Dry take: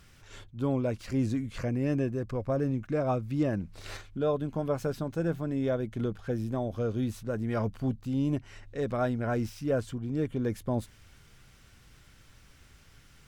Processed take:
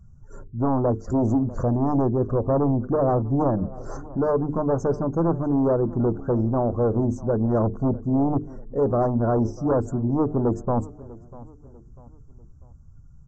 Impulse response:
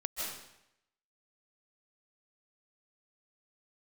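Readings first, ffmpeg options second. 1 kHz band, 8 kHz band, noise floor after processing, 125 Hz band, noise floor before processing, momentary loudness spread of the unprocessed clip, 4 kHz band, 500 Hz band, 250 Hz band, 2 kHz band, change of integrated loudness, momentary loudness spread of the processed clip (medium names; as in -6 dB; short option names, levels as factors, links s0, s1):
+11.0 dB, no reading, -48 dBFS, +7.5 dB, -57 dBFS, 5 LU, under -10 dB, +8.5 dB, +8.0 dB, -3.5 dB, +8.0 dB, 6 LU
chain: -filter_complex "[0:a]afftdn=nr=21:nf=-50,aresample=16000,aeval=exprs='0.141*sin(PI/2*2.51*val(0)/0.141)':c=same,aresample=44100,adynamicequalizer=threshold=0.0112:dfrequency=370:dqfactor=2.4:tfrequency=370:tqfactor=2.4:attack=5:release=100:ratio=0.375:range=1.5:mode=boostabove:tftype=bell,asuperstop=centerf=2900:order=8:qfactor=0.55,bandreject=f=50:t=h:w=6,bandreject=f=100:t=h:w=6,bandreject=f=150:t=h:w=6,bandreject=f=200:t=h:w=6,bandreject=f=250:t=h:w=6,bandreject=f=300:t=h:w=6,bandreject=f=350:t=h:w=6,bandreject=f=400:t=h:w=6,bandreject=f=450:t=h:w=6,asplit=2[s0][s1];[s1]adelay=645,lowpass=f=3800:p=1,volume=0.1,asplit=2[s2][s3];[s3]adelay=645,lowpass=f=3800:p=1,volume=0.39,asplit=2[s4][s5];[s5]adelay=645,lowpass=f=3800:p=1,volume=0.39[s6];[s0][s2][s4][s6]amix=inputs=4:normalize=0"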